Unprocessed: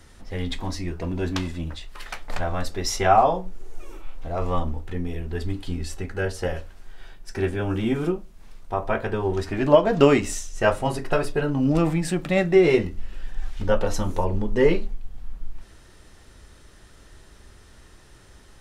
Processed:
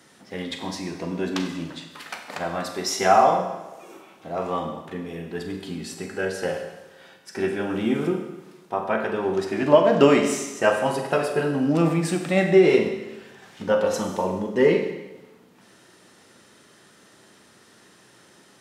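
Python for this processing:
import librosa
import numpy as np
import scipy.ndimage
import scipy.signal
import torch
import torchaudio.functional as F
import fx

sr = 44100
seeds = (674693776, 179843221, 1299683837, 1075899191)

y = scipy.signal.sosfilt(scipy.signal.butter(4, 150.0, 'highpass', fs=sr, output='sos'), x)
y = fx.rev_schroeder(y, sr, rt60_s=1.1, comb_ms=32, drr_db=4.5)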